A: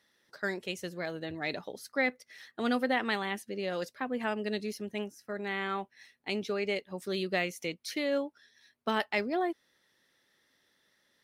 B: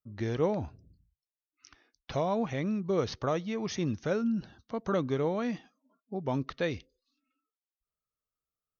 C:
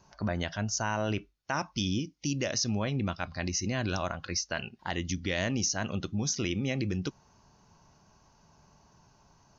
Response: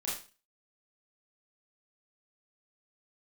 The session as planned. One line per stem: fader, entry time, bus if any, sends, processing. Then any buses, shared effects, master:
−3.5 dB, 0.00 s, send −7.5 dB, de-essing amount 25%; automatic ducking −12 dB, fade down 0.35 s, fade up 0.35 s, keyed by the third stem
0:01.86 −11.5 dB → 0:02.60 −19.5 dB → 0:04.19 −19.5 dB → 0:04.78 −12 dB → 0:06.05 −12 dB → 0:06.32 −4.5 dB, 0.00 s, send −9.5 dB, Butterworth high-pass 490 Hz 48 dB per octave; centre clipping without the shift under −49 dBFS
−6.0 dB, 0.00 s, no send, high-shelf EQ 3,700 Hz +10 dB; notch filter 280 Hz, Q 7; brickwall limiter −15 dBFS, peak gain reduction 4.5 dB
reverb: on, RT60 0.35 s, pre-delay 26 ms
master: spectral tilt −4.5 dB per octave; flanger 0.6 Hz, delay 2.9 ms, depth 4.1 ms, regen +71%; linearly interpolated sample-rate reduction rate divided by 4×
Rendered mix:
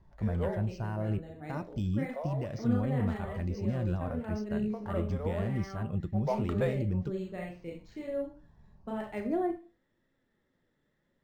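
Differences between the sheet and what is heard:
stem B −11.5 dB → −4.0 dB
stem C: missing high-shelf EQ 3,700 Hz +10 dB

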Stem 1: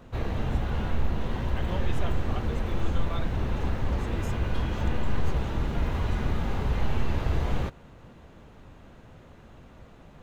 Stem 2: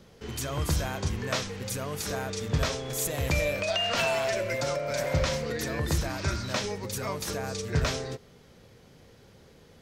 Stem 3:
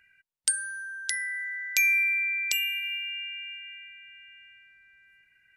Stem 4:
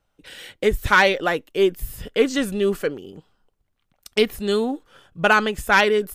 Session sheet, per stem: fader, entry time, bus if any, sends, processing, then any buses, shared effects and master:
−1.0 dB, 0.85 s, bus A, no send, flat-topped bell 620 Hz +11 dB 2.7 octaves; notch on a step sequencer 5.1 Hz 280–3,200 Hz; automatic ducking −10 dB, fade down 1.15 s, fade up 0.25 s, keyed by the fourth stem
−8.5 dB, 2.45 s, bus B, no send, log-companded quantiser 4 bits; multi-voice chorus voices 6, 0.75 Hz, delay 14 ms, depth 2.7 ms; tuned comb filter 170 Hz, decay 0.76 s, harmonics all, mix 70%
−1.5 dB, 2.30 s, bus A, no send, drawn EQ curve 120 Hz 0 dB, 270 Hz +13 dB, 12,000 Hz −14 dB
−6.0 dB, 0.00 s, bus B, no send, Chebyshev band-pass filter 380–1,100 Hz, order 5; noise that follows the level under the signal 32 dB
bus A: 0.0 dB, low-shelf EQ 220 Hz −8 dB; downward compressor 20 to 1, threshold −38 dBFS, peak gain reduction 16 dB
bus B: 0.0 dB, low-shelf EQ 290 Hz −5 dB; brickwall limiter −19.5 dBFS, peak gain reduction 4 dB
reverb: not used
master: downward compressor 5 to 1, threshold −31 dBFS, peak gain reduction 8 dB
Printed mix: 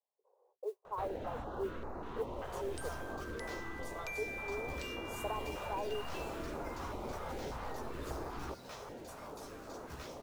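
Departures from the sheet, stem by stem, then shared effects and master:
stem 2: entry 2.45 s → 2.15 s
stem 3 −1.5 dB → −11.0 dB
stem 4 −6.0 dB → −17.5 dB

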